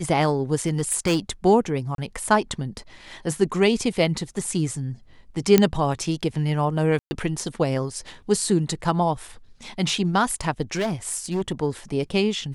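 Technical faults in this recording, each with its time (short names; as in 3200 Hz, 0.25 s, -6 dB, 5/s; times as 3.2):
0.66–1.18 clipped -16.5 dBFS
1.95–1.98 gap 32 ms
5.58 pop -2 dBFS
6.99–7.11 gap 0.12 s
10.73–11.63 clipped -20 dBFS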